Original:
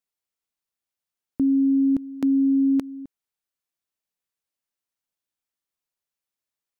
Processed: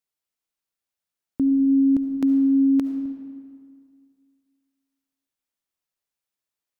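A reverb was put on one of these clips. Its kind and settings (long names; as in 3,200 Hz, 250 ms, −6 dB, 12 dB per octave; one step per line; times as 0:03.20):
comb and all-pass reverb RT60 2.1 s, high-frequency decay 0.7×, pre-delay 30 ms, DRR 7.5 dB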